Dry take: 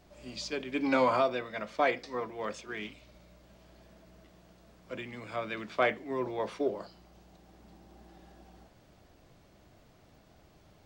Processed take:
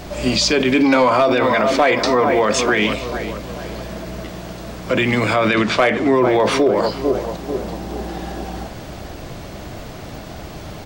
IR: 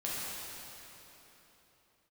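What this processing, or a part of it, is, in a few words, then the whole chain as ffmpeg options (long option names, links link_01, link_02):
loud club master: -filter_complex "[0:a]asettb=1/sr,asplit=3[link_01][link_02][link_03];[link_01]atrim=end=5.484[link_04];[link_02]atrim=start=5.48:end=6.15,asetpts=PTS-STARTPTS,afade=type=in:duration=0.004:curve=qsin,afade=type=out:start_time=0.666:duration=0.004:curve=qsin,lowpass=9300[link_05];[link_03]atrim=start=6.146[link_06];[link_04][link_05]acrossfade=duration=0.004:curve1=hsin:curve2=qsin[link_07];[link_07][link_06]acrossfade=duration=0.004:curve1=qsin:curve2=hsin,asplit=2[link_08][link_09];[link_09]adelay=442,lowpass=frequency=1600:poles=1,volume=-15dB,asplit=2[link_10][link_11];[link_11]adelay=442,lowpass=frequency=1600:poles=1,volume=0.48,asplit=2[link_12][link_13];[link_13]adelay=442,lowpass=frequency=1600:poles=1,volume=0.48,asplit=2[link_14][link_15];[link_15]adelay=442,lowpass=frequency=1600:poles=1,volume=0.48[link_16];[link_08][link_10][link_12][link_14][link_16]amix=inputs=5:normalize=0,acompressor=threshold=-31dB:ratio=2.5,asoftclip=type=hard:threshold=-25.5dB,alimiter=level_in=34dB:limit=-1dB:release=50:level=0:latency=1,volume=-6.5dB"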